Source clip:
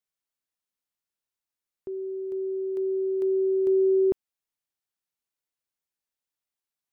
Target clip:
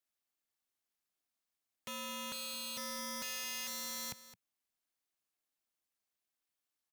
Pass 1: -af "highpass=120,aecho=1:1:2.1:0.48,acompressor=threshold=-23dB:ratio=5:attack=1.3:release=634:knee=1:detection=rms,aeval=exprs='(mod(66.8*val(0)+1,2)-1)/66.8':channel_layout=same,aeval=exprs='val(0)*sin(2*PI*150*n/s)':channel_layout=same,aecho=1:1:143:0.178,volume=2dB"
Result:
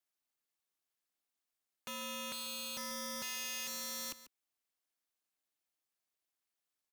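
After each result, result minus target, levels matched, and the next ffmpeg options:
echo 72 ms early; 125 Hz band −3.5 dB
-af "highpass=120,aecho=1:1:2.1:0.48,acompressor=threshold=-23dB:ratio=5:attack=1.3:release=634:knee=1:detection=rms,aeval=exprs='(mod(66.8*val(0)+1,2)-1)/66.8':channel_layout=same,aeval=exprs='val(0)*sin(2*PI*150*n/s)':channel_layout=same,aecho=1:1:215:0.178,volume=2dB"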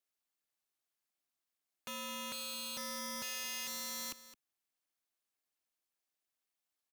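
125 Hz band −3.0 dB
-af "highpass=45,aecho=1:1:2.1:0.48,acompressor=threshold=-23dB:ratio=5:attack=1.3:release=634:knee=1:detection=rms,aeval=exprs='(mod(66.8*val(0)+1,2)-1)/66.8':channel_layout=same,aeval=exprs='val(0)*sin(2*PI*150*n/s)':channel_layout=same,aecho=1:1:215:0.178,volume=2dB"

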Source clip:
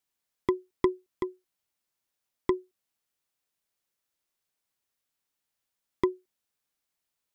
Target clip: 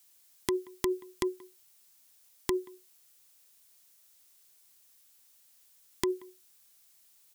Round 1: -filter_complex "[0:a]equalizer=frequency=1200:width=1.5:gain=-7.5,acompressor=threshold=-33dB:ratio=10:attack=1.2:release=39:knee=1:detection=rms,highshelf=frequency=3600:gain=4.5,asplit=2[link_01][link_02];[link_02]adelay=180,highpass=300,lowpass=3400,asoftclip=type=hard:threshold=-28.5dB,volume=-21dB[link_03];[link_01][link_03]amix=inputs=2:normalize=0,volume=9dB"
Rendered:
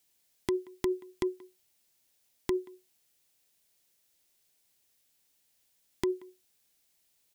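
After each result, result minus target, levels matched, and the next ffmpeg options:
8,000 Hz band −8.0 dB; 1,000 Hz band −4.0 dB
-filter_complex "[0:a]equalizer=frequency=1200:width=1.5:gain=-7.5,acompressor=threshold=-33dB:ratio=10:attack=1.2:release=39:knee=1:detection=rms,highshelf=frequency=3600:gain=14.5,asplit=2[link_01][link_02];[link_02]adelay=180,highpass=300,lowpass=3400,asoftclip=type=hard:threshold=-28.5dB,volume=-21dB[link_03];[link_01][link_03]amix=inputs=2:normalize=0,volume=9dB"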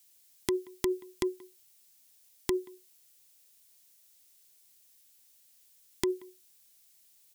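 1,000 Hz band −3.5 dB
-filter_complex "[0:a]acompressor=threshold=-33dB:ratio=10:attack=1.2:release=39:knee=1:detection=rms,highshelf=frequency=3600:gain=14.5,asplit=2[link_01][link_02];[link_02]adelay=180,highpass=300,lowpass=3400,asoftclip=type=hard:threshold=-28.5dB,volume=-21dB[link_03];[link_01][link_03]amix=inputs=2:normalize=0,volume=9dB"

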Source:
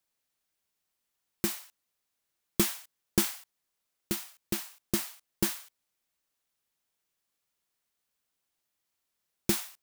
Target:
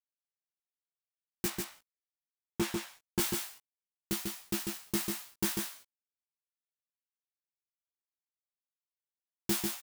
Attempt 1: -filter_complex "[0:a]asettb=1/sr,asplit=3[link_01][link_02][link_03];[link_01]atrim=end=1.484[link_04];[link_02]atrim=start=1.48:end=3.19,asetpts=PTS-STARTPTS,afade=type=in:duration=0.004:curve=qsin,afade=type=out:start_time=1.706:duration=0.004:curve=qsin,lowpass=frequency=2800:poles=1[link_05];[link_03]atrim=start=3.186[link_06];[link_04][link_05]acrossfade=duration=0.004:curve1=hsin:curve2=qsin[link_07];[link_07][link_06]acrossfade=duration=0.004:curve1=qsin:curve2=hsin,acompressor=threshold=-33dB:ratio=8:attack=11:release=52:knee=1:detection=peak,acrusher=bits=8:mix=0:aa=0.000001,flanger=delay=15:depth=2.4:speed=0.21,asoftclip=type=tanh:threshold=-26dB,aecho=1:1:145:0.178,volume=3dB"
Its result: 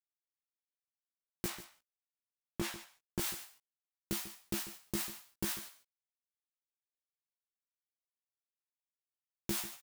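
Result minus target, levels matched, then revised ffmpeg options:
downward compressor: peak gain reduction +12 dB; echo-to-direct −11 dB
-filter_complex "[0:a]asettb=1/sr,asplit=3[link_01][link_02][link_03];[link_01]atrim=end=1.484[link_04];[link_02]atrim=start=1.48:end=3.19,asetpts=PTS-STARTPTS,afade=type=in:duration=0.004:curve=qsin,afade=type=out:start_time=1.706:duration=0.004:curve=qsin,lowpass=frequency=2800:poles=1[link_05];[link_03]atrim=start=3.186[link_06];[link_04][link_05]acrossfade=duration=0.004:curve1=hsin:curve2=qsin[link_07];[link_07][link_06]acrossfade=duration=0.004:curve1=qsin:curve2=hsin,acrusher=bits=8:mix=0:aa=0.000001,flanger=delay=15:depth=2.4:speed=0.21,asoftclip=type=tanh:threshold=-26dB,aecho=1:1:145:0.631,volume=3dB"

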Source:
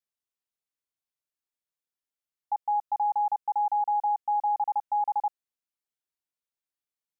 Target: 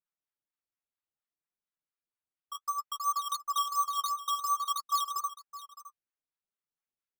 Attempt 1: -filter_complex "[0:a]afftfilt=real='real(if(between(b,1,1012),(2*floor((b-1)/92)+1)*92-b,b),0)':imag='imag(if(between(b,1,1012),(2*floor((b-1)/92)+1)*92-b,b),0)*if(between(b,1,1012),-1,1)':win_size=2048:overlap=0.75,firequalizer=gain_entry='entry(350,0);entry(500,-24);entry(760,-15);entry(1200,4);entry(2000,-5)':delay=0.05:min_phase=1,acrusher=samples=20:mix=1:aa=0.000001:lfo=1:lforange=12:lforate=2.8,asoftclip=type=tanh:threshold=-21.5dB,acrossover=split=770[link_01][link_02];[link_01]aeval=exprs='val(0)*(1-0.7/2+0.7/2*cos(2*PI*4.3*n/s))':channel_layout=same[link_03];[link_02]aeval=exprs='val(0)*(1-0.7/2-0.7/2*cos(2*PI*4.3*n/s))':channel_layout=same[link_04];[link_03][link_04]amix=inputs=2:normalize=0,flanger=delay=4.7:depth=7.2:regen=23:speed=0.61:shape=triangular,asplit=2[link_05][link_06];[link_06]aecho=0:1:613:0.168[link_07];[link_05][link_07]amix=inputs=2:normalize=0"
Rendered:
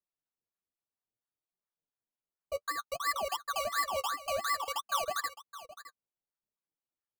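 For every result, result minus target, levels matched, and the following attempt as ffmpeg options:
sample-and-hold swept by an LFO: distortion +27 dB; soft clipping: distortion +16 dB
-filter_complex "[0:a]afftfilt=real='real(if(between(b,1,1012),(2*floor((b-1)/92)+1)*92-b,b),0)':imag='imag(if(between(b,1,1012),(2*floor((b-1)/92)+1)*92-b,b),0)*if(between(b,1,1012),-1,1)':win_size=2048:overlap=0.75,firequalizer=gain_entry='entry(350,0);entry(500,-24);entry(760,-15);entry(1200,4);entry(2000,-5)':delay=0.05:min_phase=1,acrusher=samples=8:mix=1:aa=0.000001:lfo=1:lforange=4.8:lforate=2.8,asoftclip=type=tanh:threshold=-21.5dB,acrossover=split=770[link_01][link_02];[link_01]aeval=exprs='val(0)*(1-0.7/2+0.7/2*cos(2*PI*4.3*n/s))':channel_layout=same[link_03];[link_02]aeval=exprs='val(0)*(1-0.7/2-0.7/2*cos(2*PI*4.3*n/s))':channel_layout=same[link_04];[link_03][link_04]amix=inputs=2:normalize=0,flanger=delay=4.7:depth=7.2:regen=23:speed=0.61:shape=triangular,asplit=2[link_05][link_06];[link_06]aecho=0:1:613:0.168[link_07];[link_05][link_07]amix=inputs=2:normalize=0"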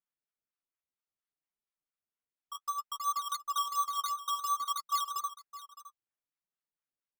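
soft clipping: distortion +16 dB
-filter_complex "[0:a]afftfilt=real='real(if(between(b,1,1012),(2*floor((b-1)/92)+1)*92-b,b),0)':imag='imag(if(between(b,1,1012),(2*floor((b-1)/92)+1)*92-b,b),0)*if(between(b,1,1012),-1,1)':win_size=2048:overlap=0.75,firequalizer=gain_entry='entry(350,0);entry(500,-24);entry(760,-15);entry(1200,4);entry(2000,-5)':delay=0.05:min_phase=1,acrusher=samples=8:mix=1:aa=0.000001:lfo=1:lforange=4.8:lforate=2.8,asoftclip=type=tanh:threshold=-12.5dB,acrossover=split=770[link_01][link_02];[link_01]aeval=exprs='val(0)*(1-0.7/2+0.7/2*cos(2*PI*4.3*n/s))':channel_layout=same[link_03];[link_02]aeval=exprs='val(0)*(1-0.7/2-0.7/2*cos(2*PI*4.3*n/s))':channel_layout=same[link_04];[link_03][link_04]amix=inputs=2:normalize=0,flanger=delay=4.7:depth=7.2:regen=23:speed=0.61:shape=triangular,asplit=2[link_05][link_06];[link_06]aecho=0:1:613:0.168[link_07];[link_05][link_07]amix=inputs=2:normalize=0"

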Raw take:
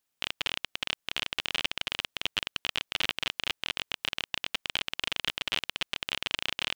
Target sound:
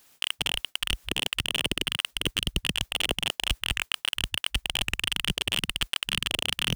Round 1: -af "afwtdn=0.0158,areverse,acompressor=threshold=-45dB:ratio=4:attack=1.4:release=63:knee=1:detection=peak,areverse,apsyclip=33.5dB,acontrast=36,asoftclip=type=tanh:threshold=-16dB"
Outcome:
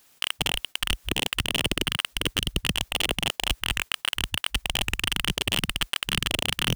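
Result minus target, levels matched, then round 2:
downward compressor: peak gain reduction −8 dB
-af "afwtdn=0.0158,areverse,acompressor=threshold=-55.5dB:ratio=4:attack=1.4:release=63:knee=1:detection=peak,areverse,apsyclip=33.5dB,acontrast=36,asoftclip=type=tanh:threshold=-16dB"

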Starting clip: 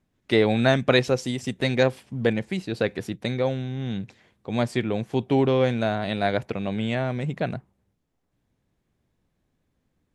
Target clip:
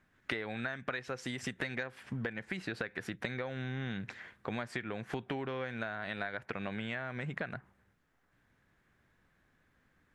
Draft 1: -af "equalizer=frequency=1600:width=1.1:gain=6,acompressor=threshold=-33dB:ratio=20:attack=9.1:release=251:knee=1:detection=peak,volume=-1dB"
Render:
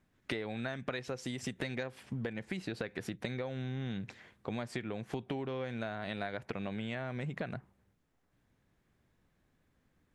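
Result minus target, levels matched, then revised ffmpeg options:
2,000 Hz band −4.5 dB
-af "equalizer=frequency=1600:width=1.1:gain=16,acompressor=threshold=-33dB:ratio=20:attack=9.1:release=251:knee=1:detection=peak,volume=-1dB"

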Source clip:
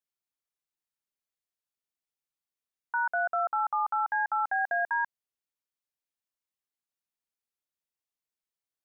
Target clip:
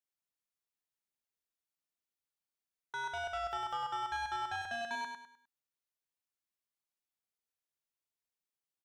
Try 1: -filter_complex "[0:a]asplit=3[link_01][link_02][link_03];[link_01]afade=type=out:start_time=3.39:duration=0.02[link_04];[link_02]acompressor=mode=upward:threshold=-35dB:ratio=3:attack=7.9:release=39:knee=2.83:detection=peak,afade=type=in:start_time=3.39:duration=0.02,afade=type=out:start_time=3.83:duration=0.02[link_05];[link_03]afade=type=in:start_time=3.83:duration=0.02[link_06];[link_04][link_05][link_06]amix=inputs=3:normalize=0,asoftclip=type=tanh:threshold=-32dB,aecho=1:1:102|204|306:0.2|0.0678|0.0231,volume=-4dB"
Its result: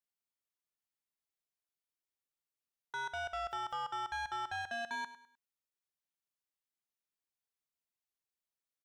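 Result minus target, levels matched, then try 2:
echo-to-direct −8.5 dB
-filter_complex "[0:a]asplit=3[link_01][link_02][link_03];[link_01]afade=type=out:start_time=3.39:duration=0.02[link_04];[link_02]acompressor=mode=upward:threshold=-35dB:ratio=3:attack=7.9:release=39:knee=2.83:detection=peak,afade=type=in:start_time=3.39:duration=0.02,afade=type=out:start_time=3.83:duration=0.02[link_05];[link_03]afade=type=in:start_time=3.83:duration=0.02[link_06];[link_04][link_05][link_06]amix=inputs=3:normalize=0,asoftclip=type=tanh:threshold=-32dB,aecho=1:1:102|204|306|408:0.531|0.181|0.0614|0.0209,volume=-4dB"

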